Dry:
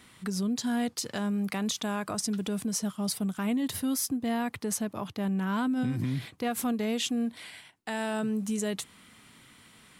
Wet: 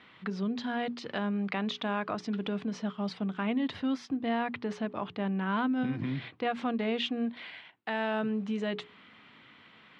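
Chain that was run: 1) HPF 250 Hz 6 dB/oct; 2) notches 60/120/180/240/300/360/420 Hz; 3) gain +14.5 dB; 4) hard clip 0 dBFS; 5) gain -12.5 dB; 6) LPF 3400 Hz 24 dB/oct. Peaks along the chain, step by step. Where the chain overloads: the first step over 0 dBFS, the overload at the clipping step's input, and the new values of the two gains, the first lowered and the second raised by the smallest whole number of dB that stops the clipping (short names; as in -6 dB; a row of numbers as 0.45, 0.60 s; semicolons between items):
-18.5, -18.5, -4.0, -4.0, -16.5, -17.5 dBFS; no overload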